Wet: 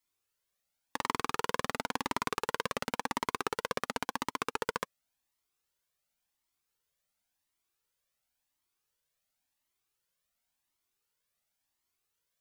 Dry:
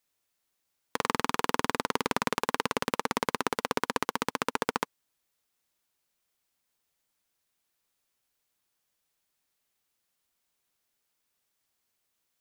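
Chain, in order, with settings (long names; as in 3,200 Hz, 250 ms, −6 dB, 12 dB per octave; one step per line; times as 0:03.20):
flanger whose copies keep moving one way rising 0.93 Hz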